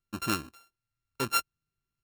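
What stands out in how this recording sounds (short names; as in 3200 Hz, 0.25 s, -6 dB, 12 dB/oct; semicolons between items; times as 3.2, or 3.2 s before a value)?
a buzz of ramps at a fixed pitch in blocks of 32 samples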